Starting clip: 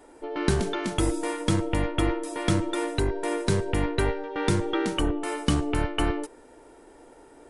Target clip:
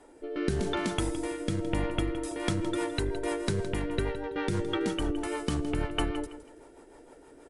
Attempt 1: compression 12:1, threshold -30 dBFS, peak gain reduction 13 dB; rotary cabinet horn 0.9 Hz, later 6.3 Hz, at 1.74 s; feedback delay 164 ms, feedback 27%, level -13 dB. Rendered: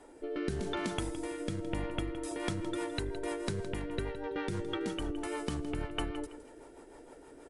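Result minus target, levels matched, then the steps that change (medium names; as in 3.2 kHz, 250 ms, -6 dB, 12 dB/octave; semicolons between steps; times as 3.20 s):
compression: peak gain reduction +6.5 dB
change: compression 12:1, threshold -23 dBFS, peak gain reduction 6.5 dB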